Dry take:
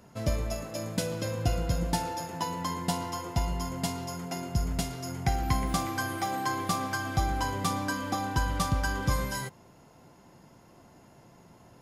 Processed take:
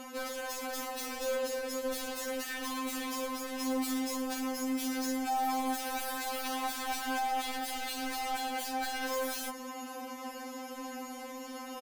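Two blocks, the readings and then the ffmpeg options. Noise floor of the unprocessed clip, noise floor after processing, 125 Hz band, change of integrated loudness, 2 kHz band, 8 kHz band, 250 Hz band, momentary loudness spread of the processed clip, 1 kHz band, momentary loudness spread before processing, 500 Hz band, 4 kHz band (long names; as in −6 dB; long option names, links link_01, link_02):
−56 dBFS, −44 dBFS, below −35 dB, −4.0 dB, −2.0 dB, −0.5 dB, −1.5 dB, 10 LU, −2.5 dB, 5 LU, −0.5 dB, −0.5 dB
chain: -af "alimiter=level_in=1.5dB:limit=-24dB:level=0:latency=1:release=32,volume=-1.5dB,highpass=220,equalizer=frequency=13000:width=4.4:gain=9.5,aecho=1:1:5.2:0.3,aeval=exprs='0.075*sin(PI/2*5.01*val(0)/0.075)':channel_layout=same,areverse,acompressor=threshold=-30dB:ratio=5,areverse,asoftclip=type=hard:threshold=-33.5dB,afftfilt=real='re*3.46*eq(mod(b,12),0)':imag='im*3.46*eq(mod(b,12),0)':win_size=2048:overlap=0.75"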